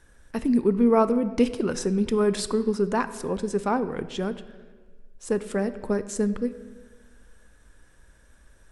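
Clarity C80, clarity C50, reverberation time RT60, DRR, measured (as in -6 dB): 15.0 dB, 14.0 dB, 1.5 s, 12.0 dB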